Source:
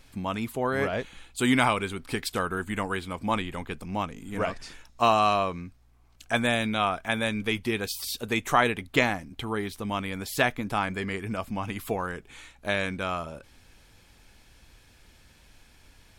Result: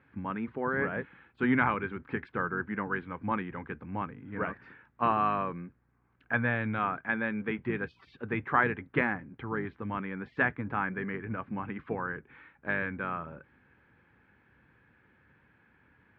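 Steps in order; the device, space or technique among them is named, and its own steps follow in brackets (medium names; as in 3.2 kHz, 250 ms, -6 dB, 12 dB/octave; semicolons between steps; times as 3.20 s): 2.19–2.86 s: dynamic bell 3.8 kHz, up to -4 dB, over -45 dBFS, Q 0.99; sub-octave bass pedal (octave divider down 1 oct, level -4 dB; cabinet simulation 81–2000 Hz, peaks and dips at 91 Hz -8 dB, 660 Hz -9 dB, 1.6 kHz +6 dB); trim -3.5 dB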